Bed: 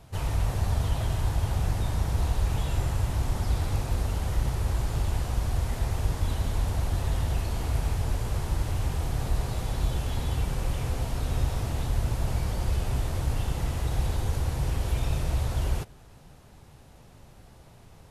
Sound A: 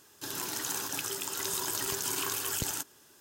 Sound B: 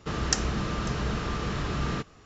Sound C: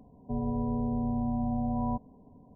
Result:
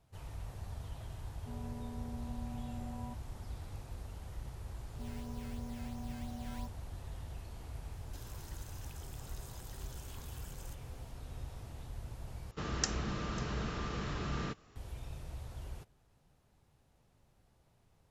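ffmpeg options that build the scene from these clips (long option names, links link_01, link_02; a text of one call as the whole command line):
ffmpeg -i bed.wav -i cue0.wav -i cue1.wav -i cue2.wav -filter_complex "[3:a]asplit=2[link_01][link_02];[0:a]volume=-18dB[link_03];[link_02]acrusher=samples=13:mix=1:aa=0.000001:lfo=1:lforange=13:lforate=2.9[link_04];[1:a]acompressor=threshold=-40dB:ratio=6:attack=3.2:release=140:knee=1:detection=peak[link_05];[link_03]asplit=2[link_06][link_07];[link_06]atrim=end=12.514[link_08];[2:a]atrim=end=2.25,asetpts=PTS-STARTPTS,volume=-8dB[link_09];[link_07]atrim=start=14.756[link_10];[link_01]atrim=end=2.55,asetpts=PTS-STARTPTS,volume=-15dB,afade=type=in:duration=0.004:curve=hsin,afade=type=out:start_time=2.546:duration=0.004:curve=hsin,adelay=1170[link_11];[link_04]atrim=end=2.55,asetpts=PTS-STARTPTS,volume=-15dB,afade=type=in:duration=0.004:curve=hsin,afade=type=out:start_time=2.546:duration=0.004:curve=hsin,adelay=4700[link_12];[link_05]atrim=end=3.2,asetpts=PTS-STARTPTS,volume=-12dB,afade=type=in:duration=0.004:curve=hsin,afade=type=out:start_time=3.196:duration=0.004:curve=hsin,adelay=7920[link_13];[link_08][link_09]acrossfade=duration=0.004:curve1=hsin:curve2=hsin[link_14];[link_14][link_10]acrossfade=duration=0.004:curve1=hsin:curve2=hsin[link_15];[link_15][link_11][link_12][link_13]amix=inputs=4:normalize=0" out.wav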